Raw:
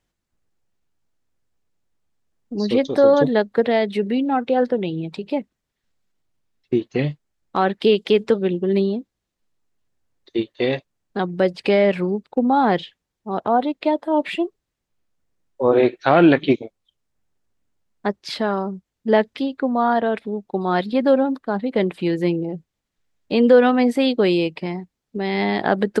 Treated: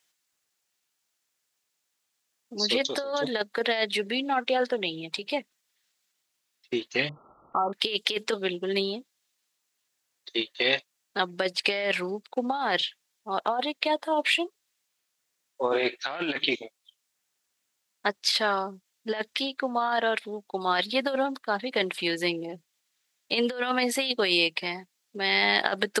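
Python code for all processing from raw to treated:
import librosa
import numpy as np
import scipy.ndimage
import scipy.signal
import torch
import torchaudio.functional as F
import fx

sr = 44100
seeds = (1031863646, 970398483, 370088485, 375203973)

y = fx.chain(x, sr, fx.clip_hard(threshold_db=-18.0),
    fx.brickwall_lowpass(high_hz=1400.0),
    fx.env_flatten(amount_pct=70), at=(7.09, 7.73))
y = fx.highpass(y, sr, hz=1000.0, slope=6)
y = fx.high_shelf(y, sr, hz=2000.0, db=11.5)
y = fx.over_compress(y, sr, threshold_db=-22.0, ratio=-0.5)
y = y * 10.0 ** (-2.0 / 20.0)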